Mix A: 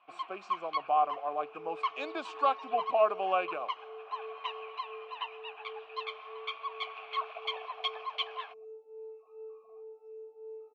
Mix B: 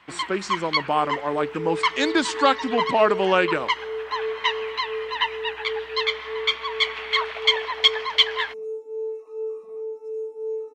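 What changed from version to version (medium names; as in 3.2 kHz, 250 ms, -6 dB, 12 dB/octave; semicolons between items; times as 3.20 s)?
master: remove vowel filter a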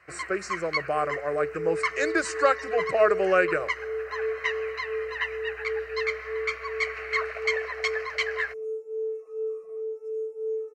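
first sound: add bass shelf 130 Hz +6.5 dB; master: add static phaser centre 920 Hz, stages 6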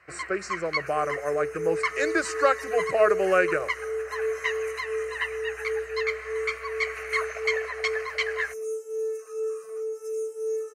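second sound: remove boxcar filter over 28 samples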